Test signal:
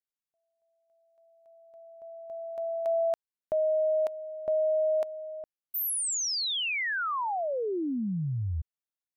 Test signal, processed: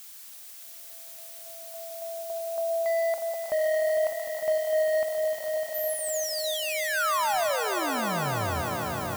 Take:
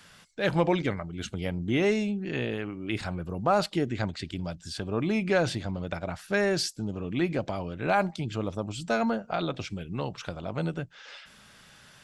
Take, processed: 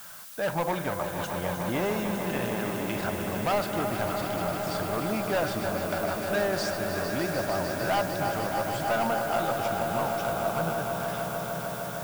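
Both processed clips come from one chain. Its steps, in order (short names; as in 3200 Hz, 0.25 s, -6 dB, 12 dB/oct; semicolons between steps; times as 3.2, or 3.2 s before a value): regenerating reverse delay 0.159 s, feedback 82%, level -13.5 dB; band shelf 940 Hz +10 dB; notch 4200 Hz, Q 21; in parallel at +2 dB: compressor, threshold -31 dBFS; on the sum: hard clip -14.5 dBFS; added noise blue -37 dBFS; on a send: swelling echo 0.151 s, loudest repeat 5, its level -10.5 dB; on the sum: gain -8.5 dB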